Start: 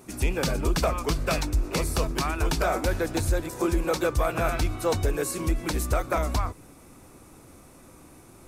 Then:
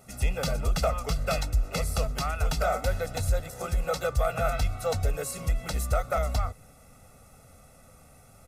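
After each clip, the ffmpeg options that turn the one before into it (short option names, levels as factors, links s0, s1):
-af "aecho=1:1:1.5:0.99,volume=0.501"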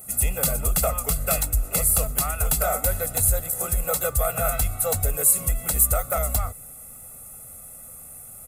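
-af "aexciter=amount=9.8:drive=5.6:freq=7800,volume=1.19"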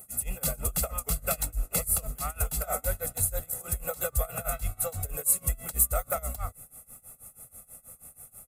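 -af "tremolo=f=6.2:d=0.92,volume=0.668"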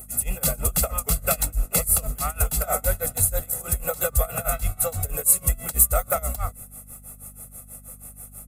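-af "aeval=exprs='val(0)+0.00224*(sin(2*PI*50*n/s)+sin(2*PI*2*50*n/s)/2+sin(2*PI*3*50*n/s)/3+sin(2*PI*4*50*n/s)/4+sin(2*PI*5*50*n/s)/5)':c=same,volume=2.11"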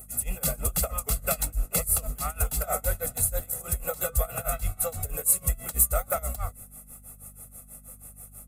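-af "flanger=delay=1.6:depth=3.4:regen=-74:speed=1.1:shape=sinusoidal"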